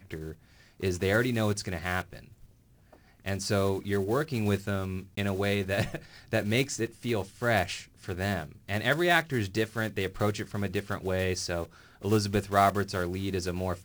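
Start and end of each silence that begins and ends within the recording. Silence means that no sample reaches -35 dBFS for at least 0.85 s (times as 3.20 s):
2.19–3.26 s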